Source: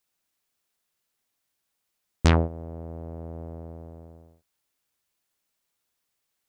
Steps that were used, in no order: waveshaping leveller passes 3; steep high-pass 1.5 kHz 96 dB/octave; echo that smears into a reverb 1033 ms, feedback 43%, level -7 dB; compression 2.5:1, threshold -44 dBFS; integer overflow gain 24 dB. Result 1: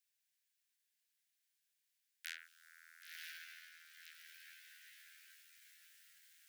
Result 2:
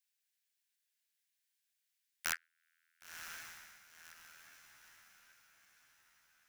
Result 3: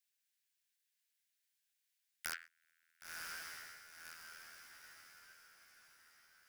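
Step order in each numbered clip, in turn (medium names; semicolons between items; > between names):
compression > integer overflow > echo that smears into a reverb > waveshaping leveller > steep high-pass; steep high-pass > compression > waveshaping leveller > integer overflow > echo that smears into a reverb; steep high-pass > integer overflow > waveshaping leveller > echo that smears into a reverb > compression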